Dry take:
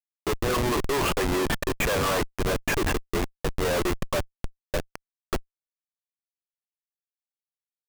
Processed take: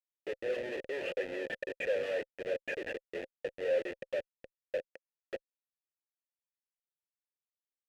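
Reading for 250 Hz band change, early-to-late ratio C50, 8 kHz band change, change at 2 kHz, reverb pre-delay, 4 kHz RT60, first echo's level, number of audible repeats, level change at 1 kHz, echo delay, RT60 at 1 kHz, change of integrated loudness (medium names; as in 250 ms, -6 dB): -17.5 dB, no reverb, under -25 dB, -10.0 dB, no reverb, no reverb, no echo, no echo, -23.5 dB, no echo, no reverb, -10.0 dB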